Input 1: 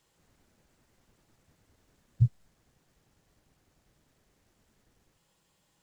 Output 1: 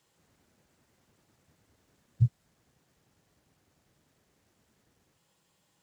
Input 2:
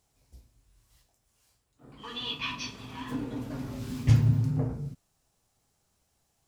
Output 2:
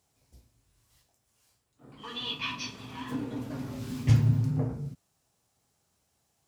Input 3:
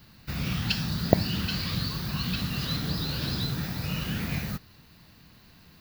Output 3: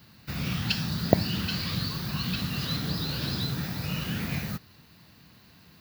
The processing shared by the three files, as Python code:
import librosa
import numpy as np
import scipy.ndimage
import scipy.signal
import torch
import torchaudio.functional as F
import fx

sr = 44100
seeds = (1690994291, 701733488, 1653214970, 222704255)

y = scipy.signal.sosfilt(scipy.signal.butter(2, 73.0, 'highpass', fs=sr, output='sos'), x)